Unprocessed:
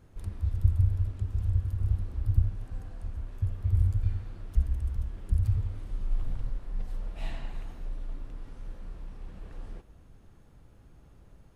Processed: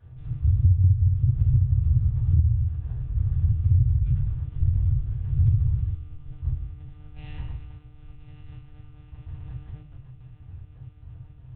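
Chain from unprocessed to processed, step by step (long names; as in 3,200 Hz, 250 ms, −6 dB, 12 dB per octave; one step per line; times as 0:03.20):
mains-hum notches 60/120/180/240/300/360 Hz
feedback delay with all-pass diffusion 1,091 ms, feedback 52%, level −10.5 dB
one-pitch LPC vocoder at 8 kHz 150 Hz
high-pass filter 44 Hz
low shelf with overshoot 150 Hz +11 dB, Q 3
convolution reverb RT60 0.35 s, pre-delay 4 ms, DRR −1 dB
downward compressor 8 to 1, threshold −13 dBFS, peak gain reduction 14 dB
parametric band 100 Hz +3 dB 0.62 octaves
level −4.5 dB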